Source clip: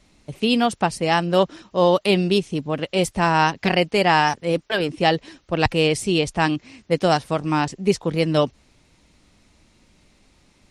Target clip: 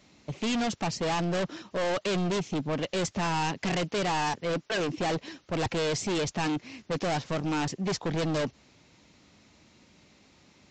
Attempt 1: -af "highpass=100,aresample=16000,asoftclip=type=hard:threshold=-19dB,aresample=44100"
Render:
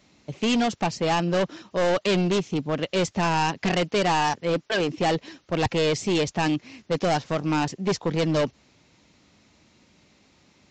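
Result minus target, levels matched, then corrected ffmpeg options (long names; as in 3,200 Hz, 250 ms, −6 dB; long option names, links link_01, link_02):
hard clipping: distortion −4 dB
-af "highpass=100,aresample=16000,asoftclip=type=hard:threshold=-26.5dB,aresample=44100"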